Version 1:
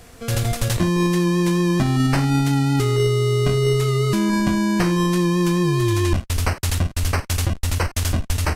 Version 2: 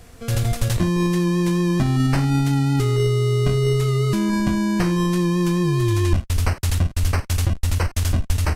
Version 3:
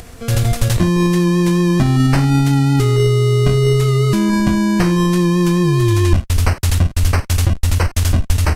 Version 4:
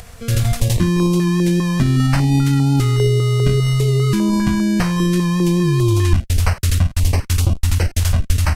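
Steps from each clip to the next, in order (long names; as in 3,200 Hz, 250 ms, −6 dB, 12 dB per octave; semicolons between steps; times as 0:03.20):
low-shelf EQ 160 Hz +6 dB; level −3 dB
upward compression, threshold −36 dBFS; level +5.5 dB
notch on a step sequencer 5 Hz 310–1,800 Hz; level −1 dB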